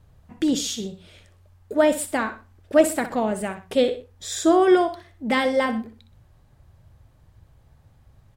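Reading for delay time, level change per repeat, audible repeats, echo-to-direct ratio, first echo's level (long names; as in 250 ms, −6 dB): 62 ms, −9.0 dB, 2, −11.5 dB, −12.0 dB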